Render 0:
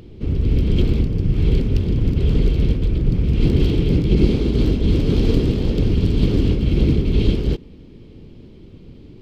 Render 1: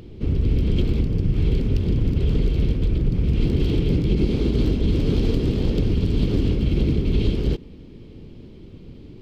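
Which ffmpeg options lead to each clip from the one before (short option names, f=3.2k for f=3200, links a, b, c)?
-af "acompressor=threshold=-15dB:ratio=6"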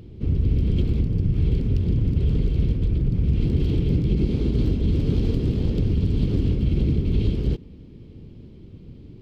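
-af "equalizer=f=100:t=o:w=2.8:g=7.5,volume=-6.5dB"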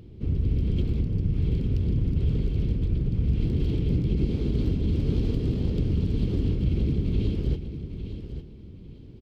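-af "aecho=1:1:854|1708|2562:0.316|0.0727|0.0167,volume=-4dB"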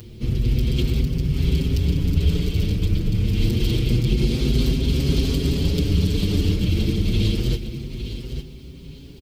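-filter_complex "[0:a]crystalizer=i=8:c=0,asplit=2[a][b];[b]adelay=6.1,afreqshift=0.27[c];[a][c]amix=inputs=2:normalize=1,volume=7.5dB"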